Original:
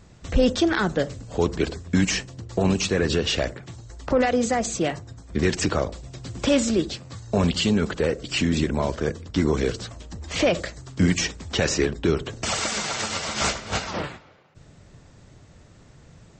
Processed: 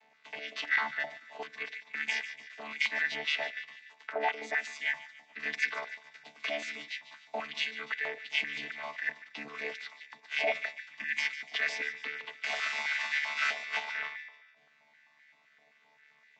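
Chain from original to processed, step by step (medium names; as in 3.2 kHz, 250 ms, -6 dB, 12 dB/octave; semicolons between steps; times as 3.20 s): vocoder on a held chord bare fifth, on D3; distance through air 140 m; feedback echo behind a high-pass 146 ms, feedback 46%, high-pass 1.6 kHz, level -12 dB; peak limiter -16 dBFS, peak gain reduction 7 dB; resonant high shelf 1.6 kHz +8.5 dB, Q 3; step-sequenced high-pass 7.7 Hz 810–1700 Hz; trim -4 dB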